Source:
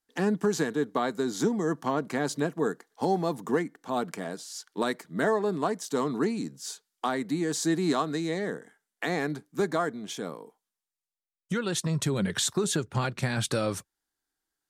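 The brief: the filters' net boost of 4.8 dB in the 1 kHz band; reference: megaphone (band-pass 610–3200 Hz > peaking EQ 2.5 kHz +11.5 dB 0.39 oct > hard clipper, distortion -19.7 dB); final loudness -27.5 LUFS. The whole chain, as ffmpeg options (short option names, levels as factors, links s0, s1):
-af "highpass=610,lowpass=3200,equalizer=f=1000:t=o:g=7,equalizer=f=2500:t=o:w=0.39:g=11.5,asoftclip=type=hard:threshold=0.133,volume=1.58"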